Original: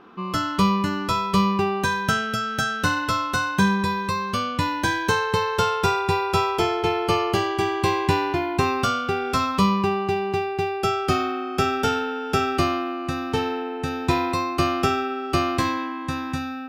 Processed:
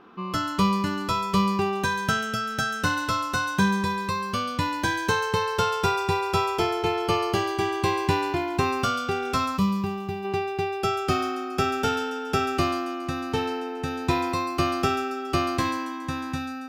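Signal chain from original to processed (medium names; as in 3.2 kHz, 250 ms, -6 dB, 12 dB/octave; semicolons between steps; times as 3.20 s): time-frequency box 9.57–10.25 s, 240–11000 Hz -7 dB; feedback echo behind a high-pass 139 ms, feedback 51%, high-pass 4.9 kHz, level -6 dB; trim -2.5 dB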